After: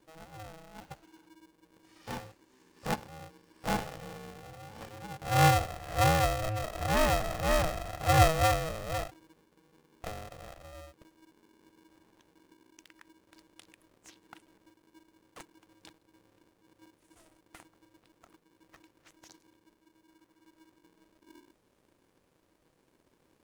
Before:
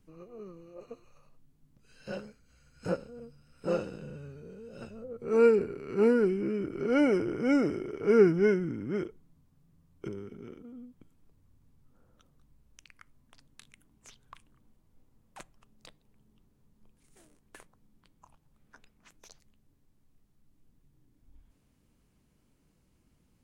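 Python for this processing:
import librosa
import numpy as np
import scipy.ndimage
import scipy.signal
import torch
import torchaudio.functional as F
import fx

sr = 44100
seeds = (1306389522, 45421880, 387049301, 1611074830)

y = np.where(x < 0.0, 10.0 ** (-3.0 / 20.0) * x, x)
y = fx.spec_box(y, sr, start_s=20.09, length_s=0.68, low_hz=660.0, high_hz=1800.0, gain_db=12)
y = y * np.sign(np.sin(2.0 * np.pi * 320.0 * np.arange(len(y)) / sr))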